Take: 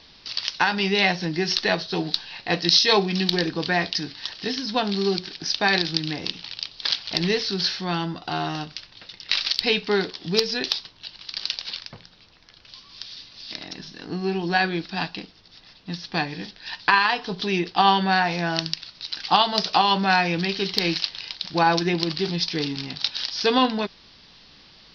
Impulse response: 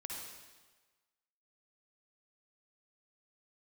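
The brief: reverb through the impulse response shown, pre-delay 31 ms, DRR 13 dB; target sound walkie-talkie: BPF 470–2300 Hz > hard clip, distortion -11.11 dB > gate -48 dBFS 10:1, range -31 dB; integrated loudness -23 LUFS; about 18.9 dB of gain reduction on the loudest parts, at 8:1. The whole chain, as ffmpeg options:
-filter_complex "[0:a]acompressor=threshold=-34dB:ratio=8,asplit=2[a][b];[1:a]atrim=start_sample=2205,adelay=31[c];[b][c]afir=irnorm=-1:irlink=0,volume=-12dB[d];[a][d]amix=inputs=2:normalize=0,highpass=470,lowpass=2.3k,asoftclip=type=hard:threshold=-35.5dB,agate=range=-31dB:threshold=-48dB:ratio=10,volume=21dB"

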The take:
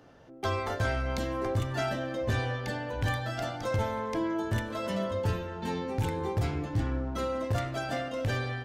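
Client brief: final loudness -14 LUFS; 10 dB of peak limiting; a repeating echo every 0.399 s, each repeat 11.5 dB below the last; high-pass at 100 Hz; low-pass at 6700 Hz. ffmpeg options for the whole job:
-af "highpass=100,lowpass=6.7k,alimiter=level_in=4dB:limit=-24dB:level=0:latency=1,volume=-4dB,aecho=1:1:399|798|1197:0.266|0.0718|0.0194,volume=22dB"

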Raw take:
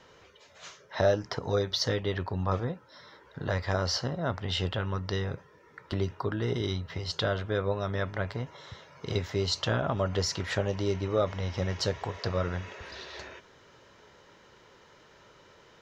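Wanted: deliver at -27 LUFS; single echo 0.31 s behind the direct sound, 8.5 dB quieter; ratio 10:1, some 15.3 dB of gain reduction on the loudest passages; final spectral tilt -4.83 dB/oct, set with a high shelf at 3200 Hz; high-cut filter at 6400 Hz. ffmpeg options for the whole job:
-af "lowpass=6.4k,highshelf=f=3.2k:g=3.5,acompressor=threshold=-35dB:ratio=10,aecho=1:1:310:0.376,volume=13dB"

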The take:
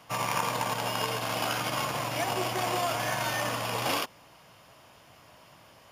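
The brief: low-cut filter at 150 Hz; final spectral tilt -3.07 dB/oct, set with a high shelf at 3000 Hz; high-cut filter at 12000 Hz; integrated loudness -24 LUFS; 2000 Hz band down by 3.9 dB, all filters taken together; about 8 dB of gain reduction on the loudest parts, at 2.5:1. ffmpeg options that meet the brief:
-af "highpass=150,lowpass=12k,equalizer=f=2k:t=o:g=-7,highshelf=f=3k:g=4.5,acompressor=threshold=-38dB:ratio=2.5,volume=13.5dB"

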